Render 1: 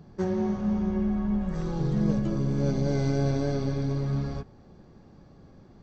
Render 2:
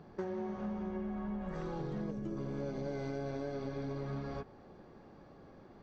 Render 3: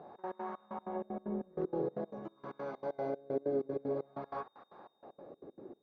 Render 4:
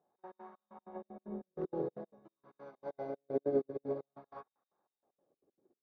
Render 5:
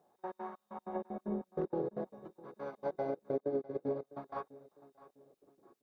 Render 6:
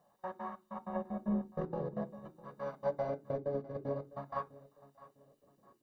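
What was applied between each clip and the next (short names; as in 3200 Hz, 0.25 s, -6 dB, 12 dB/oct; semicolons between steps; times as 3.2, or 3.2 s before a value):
spectral gain 2.11–2.37, 470–5100 Hz -7 dB; tone controls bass -11 dB, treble -11 dB; compressor, threshold -38 dBFS, peak gain reduction 11.5 dB; gain +2 dB
step gate "xx.x.xx..x." 191 bpm -24 dB; whine 3700 Hz -70 dBFS; wah 0.49 Hz 380–1100 Hz, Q 2.1; gain +11 dB
upward expander 2.5:1, over -51 dBFS; gain +4 dB
compressor 6:1, threshold -41 dBFS, peak gain reduction 14.5 dB; feedback echo 0.653 s, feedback 39%, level -19.5 dB; gain +9 dB
reverb RT60 0.25 s, pre-delay 3 ms, DRR 12 dB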